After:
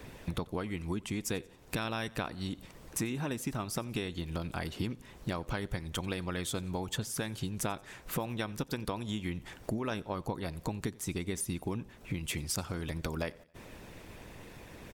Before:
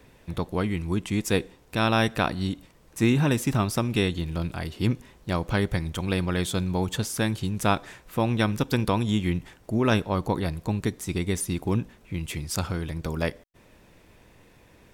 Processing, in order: harmonic-percussive split harmonic -7 dB; compressor 8:1, threshold -41 dBFS, peak gain reduction 22 dB; on a send: feedback echo 90 ms, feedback 46%, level -23.5 dB; on the sum: gain +8.5 dB

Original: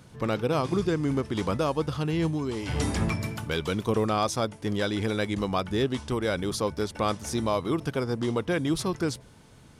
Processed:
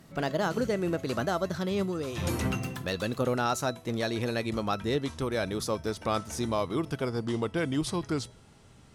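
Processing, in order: speed glide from 128% -> 91%; resonator 660 Hz, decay 0.34 s, mix 60%; gain +5 dB

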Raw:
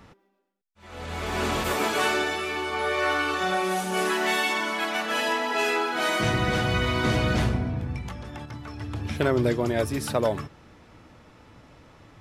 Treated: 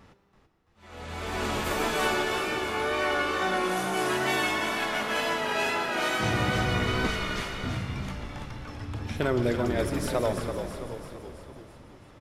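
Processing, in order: 7.07–7.64 HPF 1400 Hz 12 dB/oct; frequency-shifting echo 0.333 s, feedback 56%, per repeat -54 Hz, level -7.5 dB; plate-style reverb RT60 3.5 s, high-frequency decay 0.85×, DRR 8 dB; wow and flutter 27 cents; gain -3.5 dB

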